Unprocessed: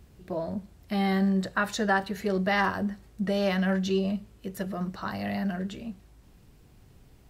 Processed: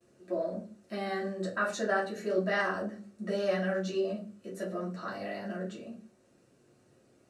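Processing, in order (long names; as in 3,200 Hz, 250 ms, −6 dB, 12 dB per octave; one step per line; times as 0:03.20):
noise gate with hold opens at −49 dBFS
loudspeaker in its box 280–9,800 Hz, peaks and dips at 520 Hz +6 dB, 920 Hz −9 dB, 2,100 Hz −6 dB, 3,300 Hz −8 dB, 4,900 Hz −4 dB
rectangular room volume 120 cubic metres, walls furnished, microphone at 2.8 metres
level −8 dB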